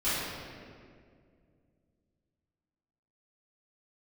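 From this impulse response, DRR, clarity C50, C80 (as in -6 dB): -16.0 dB, -3.5 dB, -0.5 dB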